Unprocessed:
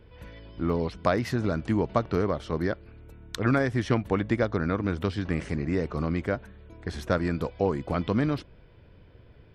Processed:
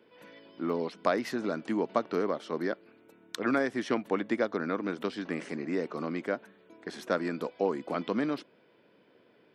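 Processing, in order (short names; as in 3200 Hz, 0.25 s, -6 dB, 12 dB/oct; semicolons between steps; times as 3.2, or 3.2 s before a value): HPF 220 Hz 24 dB/oct; gain -2.5 dB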